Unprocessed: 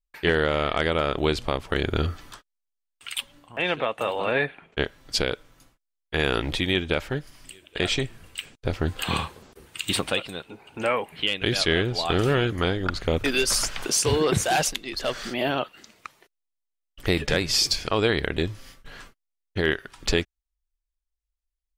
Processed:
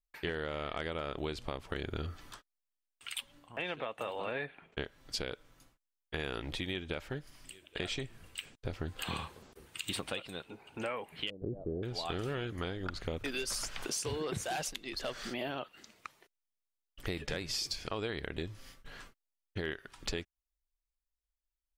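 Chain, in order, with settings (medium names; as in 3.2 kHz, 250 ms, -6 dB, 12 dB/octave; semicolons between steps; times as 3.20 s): 11.30–11.83 s: inverse Chebyshev low-pass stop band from 2 kHz, stop band 60 dB; compression 3:1, threshold -29 dBFS, peak gain reduction 9.5 dB; trim -6.5 dB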